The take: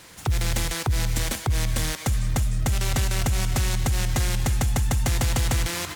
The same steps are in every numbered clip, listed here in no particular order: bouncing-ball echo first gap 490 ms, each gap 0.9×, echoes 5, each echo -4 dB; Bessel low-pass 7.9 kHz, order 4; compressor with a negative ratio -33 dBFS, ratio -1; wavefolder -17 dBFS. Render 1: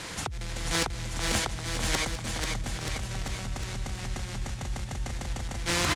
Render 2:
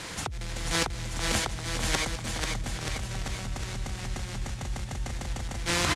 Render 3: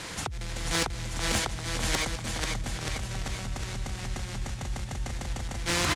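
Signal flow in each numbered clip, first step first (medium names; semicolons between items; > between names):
Bessel low-pass > compressor with a negative ratio > wavefolder > bouncing-ball echo; wavefolder > Bessel low-pass > compressor with a negative ratio > bouncing-ball echo; Bessel low-pass > compressor with a negative ratio > bouncing-ball echo > wavefolder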